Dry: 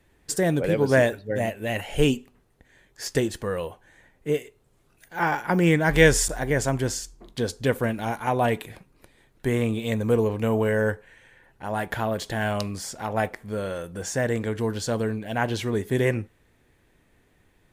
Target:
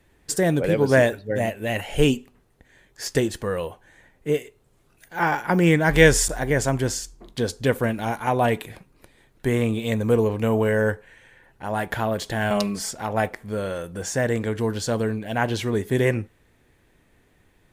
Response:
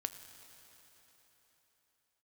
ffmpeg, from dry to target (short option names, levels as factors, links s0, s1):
-filter_complex "[0:a]asettb=1/sr,asplit=3[s0][s1][s2];[s0]atrim=end=12.504[s3];[s1]atrim=start=12.5:end=12.91,asetpts=PTS-STARTPTS,afade=t=in:d=0.004:c=qsin,afade=t=out:st=0.406:d=0.004:c=qsin,aecho=1:1:4.6:0.98,atrim=end_sample=18081[s4];[s2]atrim=start=12.906[s5];[s3][s4]acrossfade=d=0.004:c1=hsin:c2=qsin[s6];[s6][s5]acrossfade=d=0.004:c1=qsin:c2=hsin,volume=1.26"